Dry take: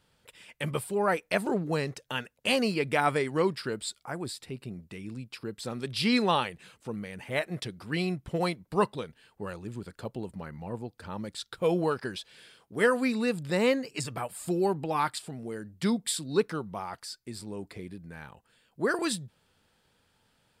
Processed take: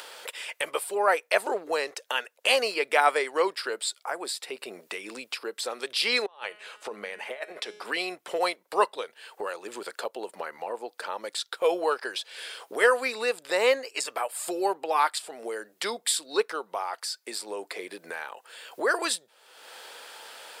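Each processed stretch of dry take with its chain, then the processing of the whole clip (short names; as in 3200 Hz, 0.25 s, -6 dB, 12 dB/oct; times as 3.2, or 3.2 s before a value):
6.26–7.85 high shelf 5900 Hz -10 dB + negative-ratio compressor -35 dBFS, ratio -0.5 + resonator 210 Hz, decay 0.59 s
whole clip: HPF 460 Hz 24 dB/oct; upward compressor, threshold -32 dBFS; gain +5 dB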